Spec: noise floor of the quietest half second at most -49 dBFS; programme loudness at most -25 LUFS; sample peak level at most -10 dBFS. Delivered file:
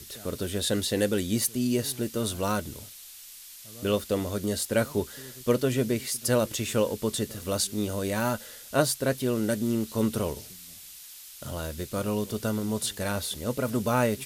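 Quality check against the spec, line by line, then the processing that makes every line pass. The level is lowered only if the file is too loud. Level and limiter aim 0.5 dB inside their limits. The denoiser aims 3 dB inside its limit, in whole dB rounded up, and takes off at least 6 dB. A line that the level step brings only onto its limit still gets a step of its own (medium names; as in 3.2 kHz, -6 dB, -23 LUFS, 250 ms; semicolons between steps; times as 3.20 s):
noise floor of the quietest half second -46 dBFS: fail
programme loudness -28.5 LUFS: pass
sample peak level -9.0 dBFS: fail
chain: noise reduction 6 dB, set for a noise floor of -46 dBFS; peak limiter -10.5 dBFS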